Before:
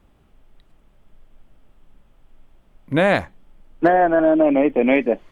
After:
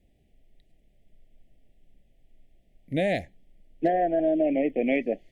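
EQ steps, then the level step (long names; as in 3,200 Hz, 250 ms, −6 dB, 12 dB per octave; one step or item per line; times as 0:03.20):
elliptic band-stop filter 720–1,900 Hz, stop band 60 dB
−7.5 dB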